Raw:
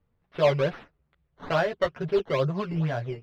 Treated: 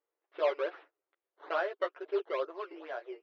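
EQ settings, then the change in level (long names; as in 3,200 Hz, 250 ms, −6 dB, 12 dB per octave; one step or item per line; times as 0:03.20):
linear-phase brick-wall high-pass 300 Hz
high-frequency loss of the air 160 metres
dynamic equaliser 1,300 Hz, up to +5 dB, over −42 dBFS, Q 2.7
−7.5 dB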